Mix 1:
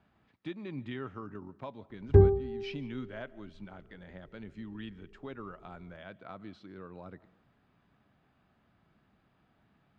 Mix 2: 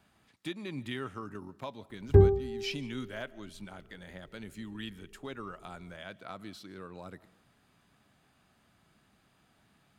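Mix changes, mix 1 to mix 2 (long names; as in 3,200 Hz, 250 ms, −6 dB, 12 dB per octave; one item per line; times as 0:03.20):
speech: remove head-to-tape spacing loss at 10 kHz 20 dB
master: remove high-frequency loss of the air 86 metres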